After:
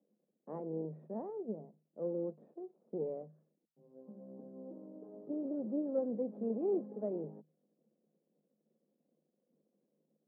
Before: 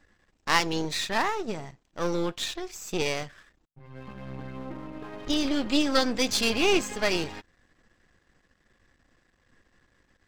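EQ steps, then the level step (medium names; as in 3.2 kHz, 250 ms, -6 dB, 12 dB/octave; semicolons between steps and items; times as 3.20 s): rippled Chebyshev high-pass 150 Hz, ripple 9 dB; four-pole ladder low-pass 550 Hz, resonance 30%; +2.0 dB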